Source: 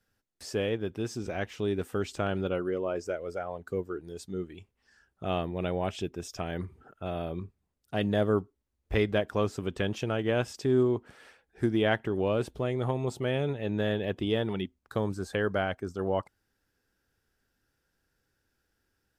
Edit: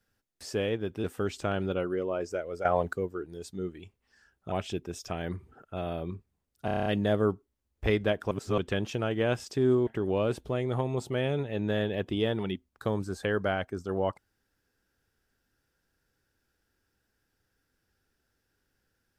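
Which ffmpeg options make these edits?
-filter_complex "[0:a]asplit=15[a][b][c][d][e][f][g][h][i][j][k][l][m][n][o];[a]atrim=end=1.042[p];[b]atrim=start=1.788:end=3.402[q];[c]atrim=start=3.398:end=3.682,asetpts=PTS-STARTPTS,volume=11.5dB[r];[d]atrim=start=3.678:end=5.272[s];[e]atrim=start=5.808:end=7.972[t];[f]atrim=start=7.938:end=7.972[u];[g]atrim=start=7.938:end=7.972[v];[h]atrim=start=7.938:end=7.972[w];[i]atrim=start=7.938:end=7.972[x];[j]atrim=start=7.938:end=7.972[y];[k]atrim=start=7.938:end=7.972[z];[l]atrim=start=7.938:end=9.392[aa];[m]atrim=start=9.388:end=9.662,asetpts=PTS-STARTPTS,areverse[ab];[n]atrim=start=9.658:end=10.952[ac];[o]atrim=start=11.968[ad];[p][q]acrossfade=d=0.004:c1=hsin:c2=hsin[ae];[ae][r]acrossfade=d=0.004:c1=hsin:c2=hsin[af];[af][s]acrossfade=d=0.004:c1=hsin:c2=hsin[ag];[ag][t]acrossfade=d=0.004:c1=hsin:c2=hsin[ah];[ah][u]acrossfade=d=0.004:c1=hsin:c2=hsin[ai];[ai][v]acrossfade=d=0.004:c1=hsin:c2=hsin[aj];[aj][w]acrossfade=d=0.004:c1=hsin:c2=hsin[ak];[ak][x]acrossfade=d=0.004:c1=hsin:c2=hsin[al];[al][y]acrossfade=d=0.004:c1=hsin:c2=hsin[am];[am][z]acrossfade=d=0.004:c1=hsin:c2=hsin[an];[an][aa]acrossfade=d=0.004:c1=hsin:c2=hsin[ao];[ao][ab]acrossfade=d=0.004:c1=hsin:c2=hsin[ap];[ap][ac]acrossfade=d=0.004:c1=hsin:c2=hsin[aq];[aq][ad]acrossfade=d=0.004:c1=hsin:c2=hsin"

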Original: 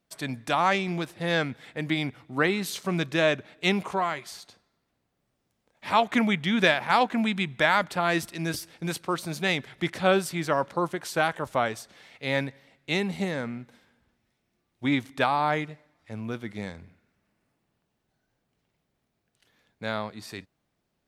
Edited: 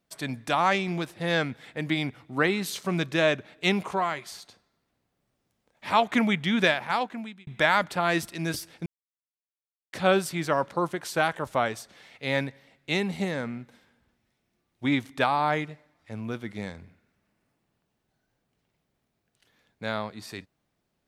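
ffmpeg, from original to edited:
-filter_complex "[0:a]asplit=4[a][b][c][d];[a]atrim=end=7.47,asetpts=PTS-STARTPTS,afade=t=out:st=6.55:d=0.92[e];[b]atrim=start=7.47:end=8.86,asetpts=PTS-STARTPTS,afade=t=in:d=0.004:c=hsin,afade=t=out:st=1.386:d=0.004:c=hsin[f];[c]atrim=start=8.86:end=9.93,asetpts=PTS-STARTPTS,volume=0[g];[d]atrim=start=9.93,asetpts=PTS-STARTPTS,afade=t=in:d=0.004:c=hsin[h];[e][f][g][h]concat=n=4:v=0:a=1"

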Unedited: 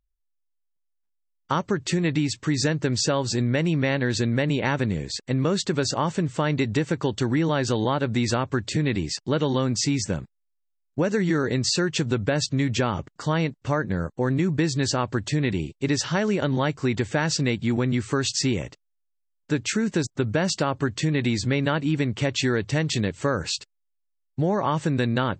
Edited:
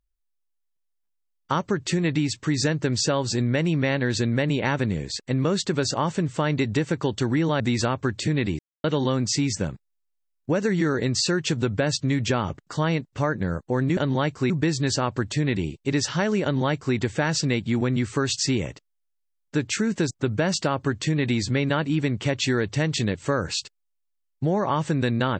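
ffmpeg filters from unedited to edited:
-filter_complex "[0:a]asplit=6[a][b][c][d][e][f];[a]atrim=end=7.602[g];[b]atrim=start=8.088:end=9.08,asetpts=PTS-STARTPTS,afade=t=out:st=0.988:d=0.004:c=hsin[h];[c]atrim=start=9.08:end=9.33,asetpts=PTS-STARTPTS,volume=0[i];[d]atrim=start=9.33:end=14.462,asetpts=PTS-STARTPTS,afade=t=in:d=0.004:c=hsin[j];[e]atrim=start=16.388:end=16.922[k];[f]atrim=start=14.458[l];[h][i][j]concat=n=3:v=0:a=1[m];[g][m]acrossfade=d=0.004:c1=hsin:c2=hsin[n];[n][k]acrossfade=d=0.004:c1=hsin:c2=hsin[o];[o][l]acrossfade=d=0.004:c1=hsin:c2=hsin"

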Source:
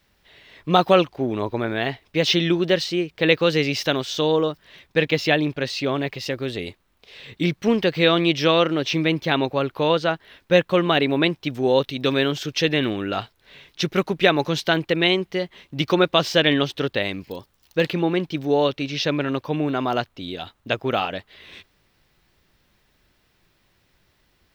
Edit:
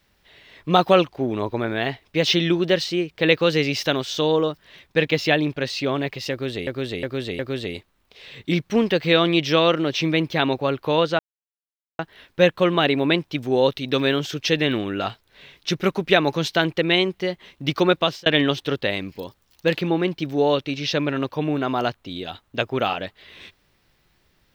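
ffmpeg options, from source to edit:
-filter_complex "[0:a]asplit=6[a][b][c][d][e][f];[a]atrim=end=6.672[g];[b]atrim=start=6.308:end=6.672[h];[c]atrim=start=6.308:end=6.672[i];[d]atrim=start=6.308:end=10.11,asetpts=PTS-STARTPTS,afade=t=out:st=3.798:d=0.004:c=hsin,apad=pad_dur=0.8[j];[e]atrim=start=10.11:end=16.38,asetpts=PTS-STARTPTS,afade=t=in:d=0.004:c=hsin,afade=t=out:st=5.99:d=0.28[k];[f]atrim=start=16.38,asetpts=PTS-STARTPTS,afade=t=in:d=0.004:c=hsin[l];[g][h]acrossfade=d=0.004:c1=hsin:c2=hsin[m];[m][i]acrossfade=d=0.004:c1=hsin:c2=hsin[n];[j][k][l]concat=n=3:v=0:a=1[o];[n][o]acrossfade=d=0.004:c1=hsin:c2=hsin"

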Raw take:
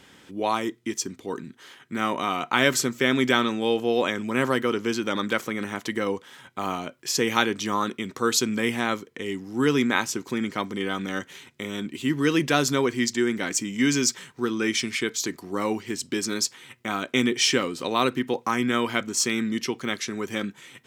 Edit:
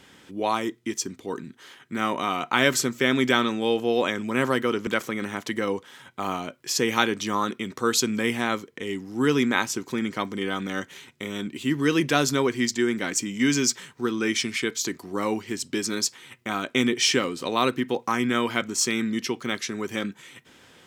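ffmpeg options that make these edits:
-filter_complex "[0:a]asplit=2[a][b];[a]atrim=end=4.872[c];[b]atrim=start=5.258[d];[c][d]acrossfade=d=0.004:c1=hsin:c2=hsin"

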